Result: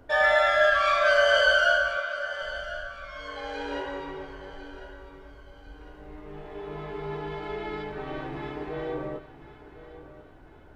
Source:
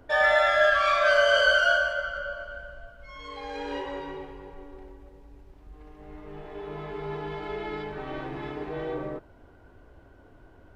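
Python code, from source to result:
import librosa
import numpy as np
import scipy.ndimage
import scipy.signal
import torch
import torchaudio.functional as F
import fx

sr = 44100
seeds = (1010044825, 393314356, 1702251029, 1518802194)

y = fx.highpass(x, sr, hz=340.0, slope=12, at=(1.97, 2.42))
y = fx.echo_feedback(y, sr, ms=1051, feedback_pct=43, wet_db=-15)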